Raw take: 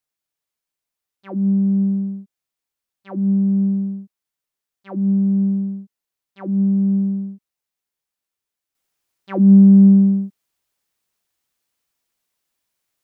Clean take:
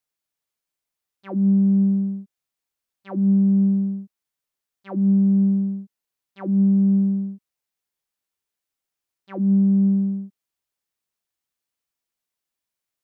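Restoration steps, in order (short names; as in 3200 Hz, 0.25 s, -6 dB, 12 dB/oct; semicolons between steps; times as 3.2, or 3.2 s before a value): gain 0 dB, from 8.75 s -8.5 dB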